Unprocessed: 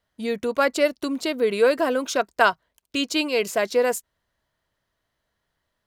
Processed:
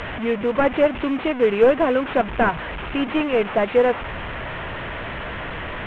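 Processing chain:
linear delta modulator 16 kbit/s, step −27 dBFS
log-companded quantiser 8 bits
high-frequency loss of the air 78 metres
level +4 dB

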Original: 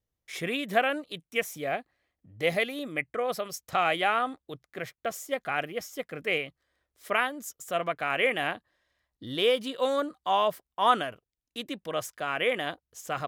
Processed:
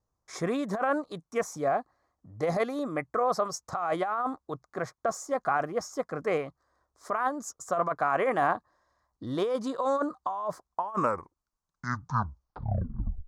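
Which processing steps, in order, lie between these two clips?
turntable brake at the end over 2.65 s
drawn EQ curve 520 Hz 0 dB, 1,100 Hz +10 dB, 2,900 Hz −22 dB, 4,500 Hz −4 dB, 6,600 Hz 0 dB, 15,000 Hz −22 dB
compressor whose output falls as the input rises −27 dBFS, ratio −1

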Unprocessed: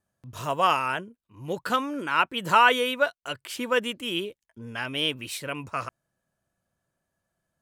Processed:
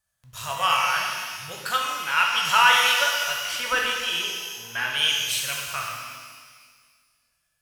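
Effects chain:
guitar amp tone stack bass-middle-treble 10-0-10
0:03.18–0:04.94: mid-hump overdrive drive 15 dB, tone 1,300 Hz, clips at −17 dBFS
reverb with rising layers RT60 1.7 s, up +12 semitones, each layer −8 dB, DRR −1.5 dB
level +6 dB

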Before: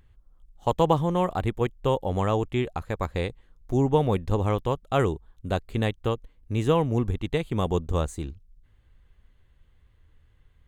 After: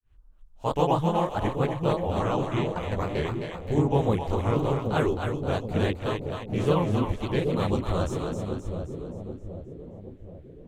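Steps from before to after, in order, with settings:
granular cloud 254 ms, grains 30 per second, spray 26 ms, pitch spread up and down by 3 semitones
echo with a time of its own for lows and highs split 620 Hz, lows 778 ms, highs 263 ms, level −5 dB
level +5.5 dB

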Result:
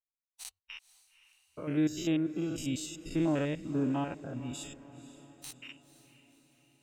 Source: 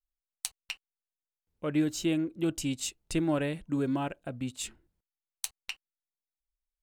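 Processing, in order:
spectrum averaged block by block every 100 ms
noise reduction from a noise print of the clip's start 23 dB
feedback delay with all-pass diffusion 507 ms, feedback 51%, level −15.5 dB

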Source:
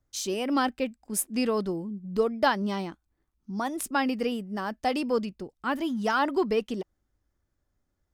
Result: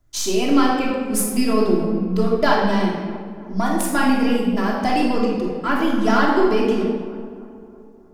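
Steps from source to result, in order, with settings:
gain on one half-wave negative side −3 dB
in parallel at +3 dB: downward compressor, threshold −33 dBFS, peak gain reduction 13 dB
on the sum: tape delay 313 ms, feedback 60%, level −15 dB, low-pass 1,600 Hz
rectangular room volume 1,300 cubic metres, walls mixed, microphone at 3 metres

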